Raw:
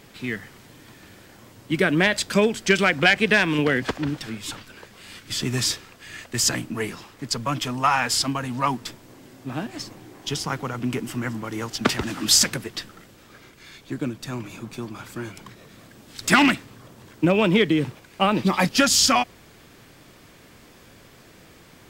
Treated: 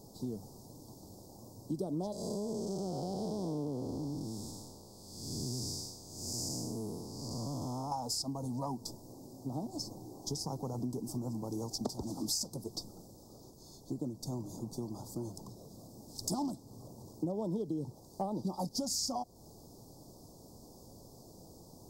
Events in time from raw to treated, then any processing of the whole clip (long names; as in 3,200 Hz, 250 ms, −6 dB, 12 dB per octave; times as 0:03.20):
0:02.12–0:07.92: spectrum smeared in time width 317 ms
whole clip: elliptic band-stop filter 870–4,900 Hz, stop band 50 dB; downward compressor 4 to 1, threshold −32 dBFS; level −3 dB